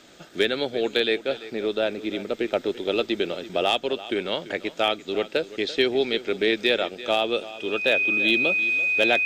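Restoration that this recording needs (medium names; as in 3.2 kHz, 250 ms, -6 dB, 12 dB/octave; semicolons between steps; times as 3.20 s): clip repair -10.5 dBFS; band-stop 2.5 kHz, Q 30; inverse comb 339 ms -16 dB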